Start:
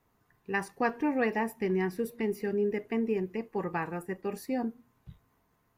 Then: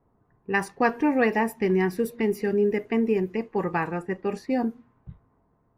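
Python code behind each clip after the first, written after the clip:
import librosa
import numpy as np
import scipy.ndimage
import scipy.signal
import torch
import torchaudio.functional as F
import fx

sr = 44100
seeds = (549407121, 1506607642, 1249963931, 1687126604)

y = fx.env_lowpass(x, sr, base_hz=840.0, full_db=-28.0)
y = F.gain(torch.from_numpy(y), 6.5).numpy()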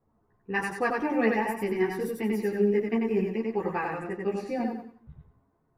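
y = fx.echo_feedback(x, sr, ms=93, feedback_pct=34, wet_db=-3.0)
y = fx.ensemble(y, sr)
y = F.gain(torch.from_numpy(y), -2.0).numpy()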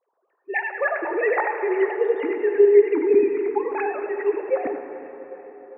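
y = fx.sine_speech(x, sr)
y = fx.echo_feedback(y, sr, ms=399, feedback_pct=52, wet_db=-19)
y = fx.rev_plate(y, sr, seeds[0], rt60_s=4.5, hf_ratio=0.55, predelay_ms=0, drr_db=6.5)
y = F.gain(torch.from_numpy(y), 6.0).numpy()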